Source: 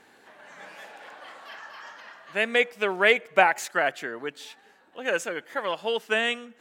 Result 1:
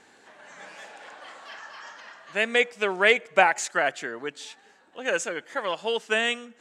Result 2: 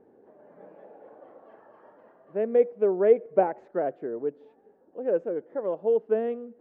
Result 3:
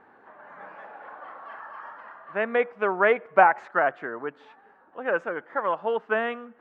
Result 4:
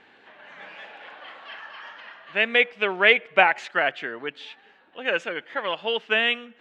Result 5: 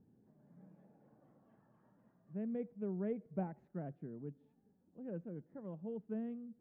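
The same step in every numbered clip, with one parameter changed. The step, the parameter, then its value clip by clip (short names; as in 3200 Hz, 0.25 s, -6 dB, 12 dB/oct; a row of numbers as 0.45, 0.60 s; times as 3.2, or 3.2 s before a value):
synth low-pass, frequency: 7700, 460, 1200, 3000, 160 Hz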